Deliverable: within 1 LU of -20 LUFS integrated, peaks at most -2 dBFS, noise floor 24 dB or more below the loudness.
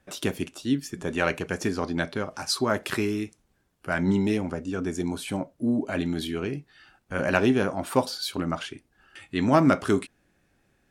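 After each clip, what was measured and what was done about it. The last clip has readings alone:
loudness -27.0 LUFS; peak -4.5 dBFS; loudness target -20.0 LUFS
-> gain +7 dB; limiter -2 dBFS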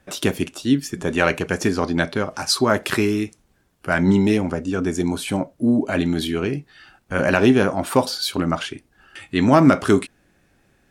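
loudness -20.5 LUFS; peak -2.0 dBFS; noise floor -62 dBFS

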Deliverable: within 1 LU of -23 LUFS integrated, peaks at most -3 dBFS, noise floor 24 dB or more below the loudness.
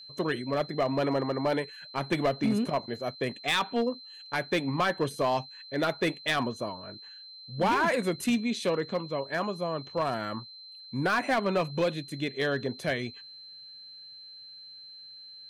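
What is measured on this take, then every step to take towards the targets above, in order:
clipped 1.0%; flat tops at -20.0 dBFS; steady tone 4100 Hz; tone level -45 dBFS; loudness -29.5 LUFS; peak -20.0 dBFS; loudness target -23.0 LUFS
-> clip repair -20 dBFS; notch 4100 Hz, Q 30; gain +6.5 dB

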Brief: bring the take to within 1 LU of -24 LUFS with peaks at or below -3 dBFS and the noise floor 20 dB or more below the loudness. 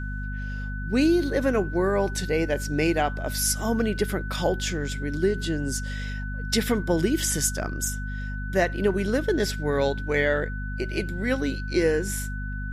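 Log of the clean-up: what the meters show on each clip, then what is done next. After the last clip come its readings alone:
hum 50 Hz; harmonics up to 250 Hz; hum level -29 dBFS; steady tone 1500 Hz; tone level -37 dBFS; loudness -26.0 LUFS; peak -9.5 dBFS; loudness target -24.0 LUFS
-> de-hum 50 Hz, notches 5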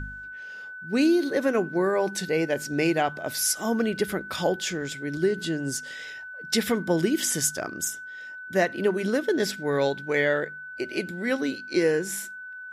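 hum none; steady tone 1500 Hz; tone level -37 dBFS
-> notch 1500 Hz, Q 30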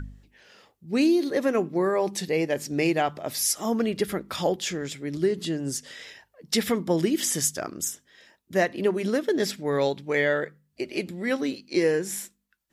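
steady tone none; loudness -26.0 LUFS; peak -10.0 dBFS; loudness target -24.0 LUFS
-> gain +2 dB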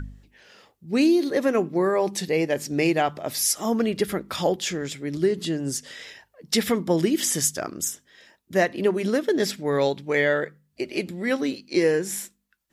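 loudness -24.0 LUFS; peak -8.0 dBFS; noise floor -71 dBFS

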